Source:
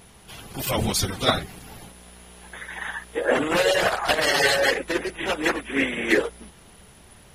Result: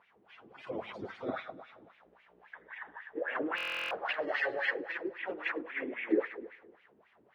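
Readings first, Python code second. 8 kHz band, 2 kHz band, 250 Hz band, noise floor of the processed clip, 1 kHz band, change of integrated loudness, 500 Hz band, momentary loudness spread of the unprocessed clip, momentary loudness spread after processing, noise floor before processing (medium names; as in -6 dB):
under -30 dB, -11.0 dB, -10.5 dB, -67 dBFS, -13.5 dB, -13.0 dB, -13.0 dB, 19 LU, 19 LU, -50 dBFS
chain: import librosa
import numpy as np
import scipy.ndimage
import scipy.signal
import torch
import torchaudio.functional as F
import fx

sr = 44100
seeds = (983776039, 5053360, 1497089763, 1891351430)

p1 = fx.spacing_loss(x, sr, db_at_10k=22)
p2 = p1 + fx.echo_feedback(p1, sr, ms=102, feedback_pct=59, wet_db=-10.5, dry=0)
p3 = fx.wah_lfo(p2, sr, hz=3.7, low_hz=310.0, high_hz=2500.0, q=3.3)
p4 = scipy.signal.sosfilt(scipy.signal.butter(2, 59.0, 'highpass', fs=sr, output='sos'), p3)
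p5 = fx.peak_eq(p4, sr, hz=1900.0, db=3.0, octaves=2.0)
p6 = fx.buffer_glitch(p5, sr, at_s=(3.56,), block=1024, repeats=14)
y = p6 * librosa.db_to_amplitude(-3.5)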